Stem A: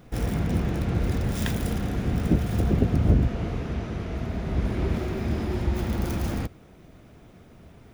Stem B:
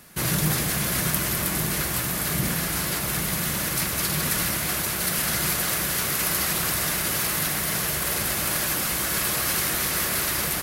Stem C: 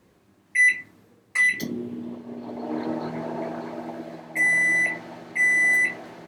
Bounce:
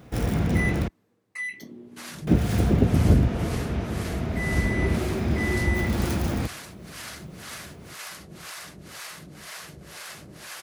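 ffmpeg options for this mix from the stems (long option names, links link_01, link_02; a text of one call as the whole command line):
ffmpeg -i stem1.wav -i stem2.wav -i stem3.wav -filter_complex "[0:a]volume=2.5dB,asplit=3[link_01][link_02][link_03];[link_01]atrim=end=0.88,asetpts=PTS-STARTPTS,afade=type=out:start_time=0.876:duration=0.004:curve=hsin[link_04];[link_02]atrim=start=0.88:end=2.27,asetpts=PTS-STARTPTS,volume=0[link_05];[link_03]atrim=start=2.27,asetpts=PTS-STARTPTS,afade=type=in:duration=0.004:curve=hsin[link_06];[link_04][link_05][link_06]concat=n=3:v=0:a=1[link_07];[1:a]lowpass=7700,acrossover=split=530[link_08][link_09];[link_08]aeval=exprs='val(0)*(1-1/2+1/2*cos(2*PI*2*n/s))':channel_layout=same[link_10];[link_09]aeval=exprs='val(0)*(1-1/2-1/2*cos(2*PI*2*n/s))':channel_layout=same[link_11];[link_10][link_11]amix=inputs=2:normalize=0,adelay=1800,volume=-9.5dB,asplit=2[link_12][link_13];[link_13]volume=-9.5dB[link_14];[2:a]volume=-12.5dB[link_15];[link_14]aecho=0:1:460|920|1380|1840|2300|2760:1|0.44|0.194|0.0852|0.0375|0.0165[link_16];[link_07][link_12][link_15][link_16]amix=inputs=4:normalize=0,highpass=54" out.wav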